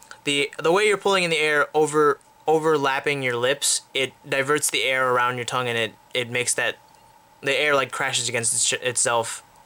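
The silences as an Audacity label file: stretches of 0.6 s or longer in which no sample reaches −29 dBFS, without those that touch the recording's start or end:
6.720000	7.430000	silence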